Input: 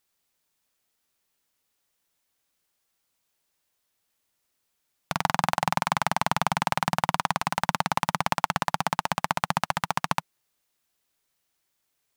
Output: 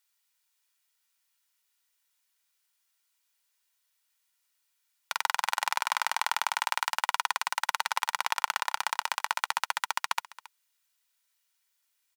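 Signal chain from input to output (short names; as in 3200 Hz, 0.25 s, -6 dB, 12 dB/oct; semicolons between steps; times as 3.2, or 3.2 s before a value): HPF 1200 Hz 12 dB/oct; comb 2.1 ms, depth 37%; echo 0.273 s -19 dB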